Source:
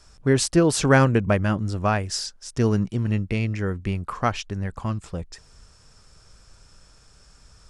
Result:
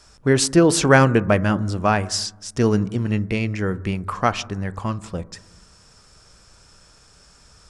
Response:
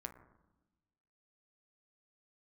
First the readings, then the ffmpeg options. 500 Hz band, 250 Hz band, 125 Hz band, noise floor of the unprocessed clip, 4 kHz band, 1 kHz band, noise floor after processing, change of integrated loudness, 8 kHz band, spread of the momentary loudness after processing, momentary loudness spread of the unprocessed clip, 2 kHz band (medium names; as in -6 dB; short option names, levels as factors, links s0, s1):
+3.5 dB, +3.0 dB, +1.0 dB, -54 dBFS, +4.0 dB, +4.0 dB, -52 dBFS, +3.0 dB, +4.0 dB, 14 LU, 13 LU, +4.5 dB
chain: -filter_complex "[0:a]lowshelf=f=87:g=-9.5,asplit=2[s0][s1];[1:a]atrim=start_sample=2205[s2];[s1][s2]afir=irnorm=-1:irlink=0,volume=0.75[s3];[s0][s3]amix=inputs=2:normalize=0,volume=1.12"